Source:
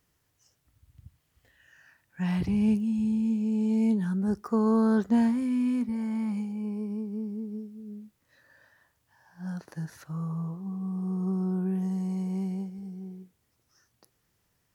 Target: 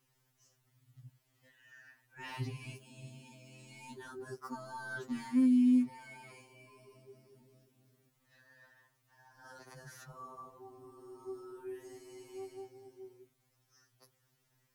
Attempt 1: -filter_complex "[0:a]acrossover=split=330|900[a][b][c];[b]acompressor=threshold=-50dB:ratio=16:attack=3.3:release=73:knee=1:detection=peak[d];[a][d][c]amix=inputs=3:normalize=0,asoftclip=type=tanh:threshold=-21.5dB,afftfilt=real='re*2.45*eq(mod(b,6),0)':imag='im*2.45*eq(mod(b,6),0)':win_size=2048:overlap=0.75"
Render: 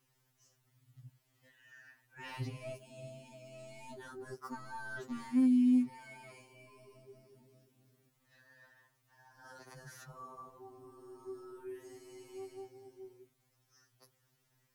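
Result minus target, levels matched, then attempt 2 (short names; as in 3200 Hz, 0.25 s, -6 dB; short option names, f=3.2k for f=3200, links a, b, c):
soft clip: distortion +16 dB
-filter_complex "[0:a]acrossover=split=330|900[a][b][c];[b]acompressor=threshold=-50dB:ratio=16:attack=3.3:release=73:knee=1:detection=peak[d];[a][d][c]amix=inputs=3:normalize=0,asoftclip=type=tanh:threshold=-12dB,afftfilt=real='re*2.45*eq(mod(b,6),0)':imag='im*2.45*eq(mod(b,6),0)':win_size=2048:overlap=0.75"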